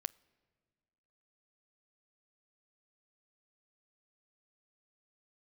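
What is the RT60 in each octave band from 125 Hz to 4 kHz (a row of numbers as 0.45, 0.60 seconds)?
1.9, 2.0, 1.8, 1.7, 1.6, 1.3 seconds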